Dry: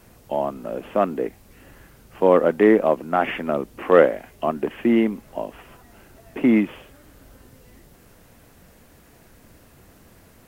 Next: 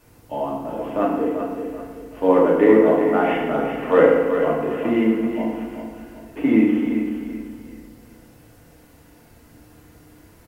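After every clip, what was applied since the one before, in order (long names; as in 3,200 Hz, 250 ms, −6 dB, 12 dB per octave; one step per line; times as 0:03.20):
on a send: repeating echo 384 ms, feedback 35%, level −8 dB
on the sum: feedback delay network reverb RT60 1.2 s, low-frequency decay 1.3×, high-frequency decay 0.7×, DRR −4.5 dB
level −6 dB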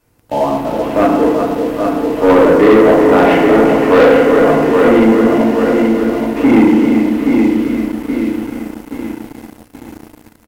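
on a send: repeating echo 825 ms, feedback 47%, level −6.5 dB
on the sum: leveller curve on the samples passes 3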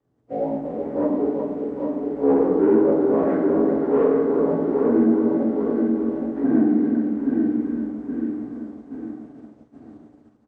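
partials spread apart or drawn together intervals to 86%
resonant band-pass 260 Hz, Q 0.62
level −6.5 dB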